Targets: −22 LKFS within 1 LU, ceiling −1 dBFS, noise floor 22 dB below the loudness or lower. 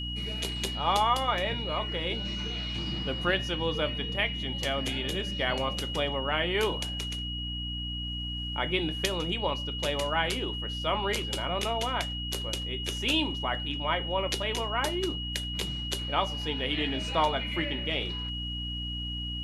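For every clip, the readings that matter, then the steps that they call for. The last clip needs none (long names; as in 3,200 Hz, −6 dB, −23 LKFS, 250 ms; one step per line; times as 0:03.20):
mains hum 60 Hz; hum harmonics up to 300 Hz; level of the hum −34 dBFS; interfering tone 2,900 Hz; level of the tone −35 dBFS; integrated loudness −30.0 LKFS; sample peak −11.5 dBFS; target loudness −22.0 LKFS
→ hum removal 60 Hz, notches 5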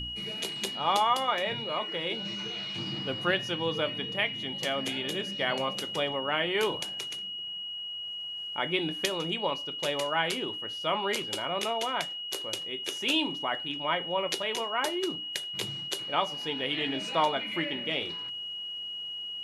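mains hum none found; interfering tone 2,900 Hz; level of the tone −35 dBFS
→ notch filter 2,900 Hz, Q 30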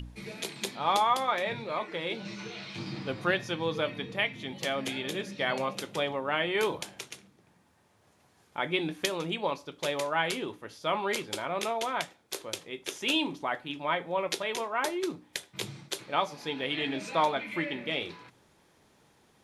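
interfering tone none found; integrated loudness −31.5 LKFS; sample peak −12.5 dBFS; target loudness −22.0 LKFS
→ level +9.5 dB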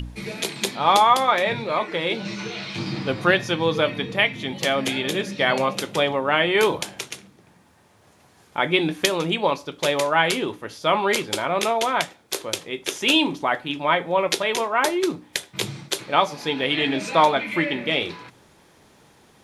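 integrated loudness −22.0 LKFS; sample peak −3.0 dBFS; background noise floor −56 dBFS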